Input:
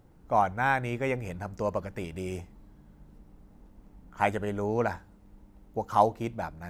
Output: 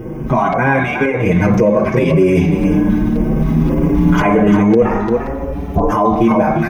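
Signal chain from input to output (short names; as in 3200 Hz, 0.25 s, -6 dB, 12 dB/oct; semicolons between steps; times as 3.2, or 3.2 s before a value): recorder AGC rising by 6.3 dB/s; bell 6400 Hz -7 dB 1.1 oct; reverb RT60 0.60 s, pre-delay 3 ms, DRR 2 dB; compressor 3:1, threshold -29 dBFS, peak gain reduction 16 dB; 4.82–5.92 ring modulator 240 Hz; LFO notch square 1.9 Hz 510–3900 Hz; echo 0.347 s -10.5 dB; maximiser +26 dB; endless flanger 6 ms +0.62 Hz; gain -1 dB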